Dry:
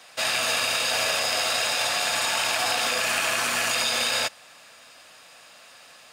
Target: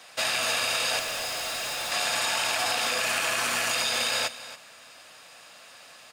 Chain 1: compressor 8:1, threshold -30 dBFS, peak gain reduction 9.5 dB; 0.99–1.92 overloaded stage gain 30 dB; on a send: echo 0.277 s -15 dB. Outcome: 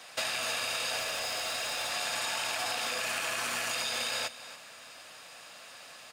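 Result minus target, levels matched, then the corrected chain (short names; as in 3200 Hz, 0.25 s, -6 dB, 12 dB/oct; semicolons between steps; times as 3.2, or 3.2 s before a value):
compressor: peak gain reduction +6.5 dB
compressor 8:1, threshold -22.5 dBFS, peak gain reduction 3 dB; 0.99–1.92 overloaded stage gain 30 dB; on a send: echo 0.277 s -15 dB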